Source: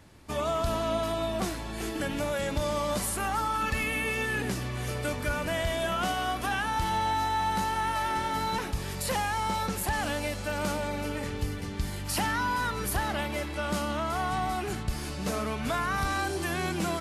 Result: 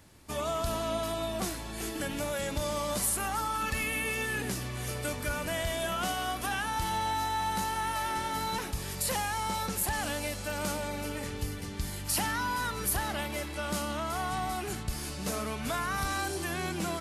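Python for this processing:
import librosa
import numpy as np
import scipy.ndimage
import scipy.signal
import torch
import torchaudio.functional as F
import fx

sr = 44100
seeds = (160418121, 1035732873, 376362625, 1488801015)

y = fx.high_shelf(x, sr, hz=5500.0, db=fx.steps((0.0, 9.0), (16.41, 4.0)))
y = F.gain(torch.from_numpy(y), -3.5).numpy()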